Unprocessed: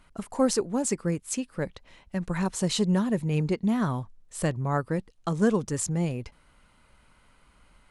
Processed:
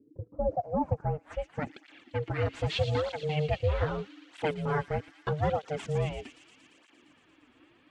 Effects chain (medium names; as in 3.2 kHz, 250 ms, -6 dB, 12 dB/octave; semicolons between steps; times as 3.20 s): spectral replace 0.62–0.86 s, 1.8–9.1 kHz; in parallel at -11 dB: sample-rate reducer 6.6 kHz; on the sum: low-pass sweep 130 Hz -> 2.9 kHz, 0.12–1.63 s; ring modulator 300 Hz; feedback echo behind a high-pass 115 ms, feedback 79%, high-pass 4 kHz, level -5 dB; cancelling through-zero flanger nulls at 0.8 Hz, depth 6 ms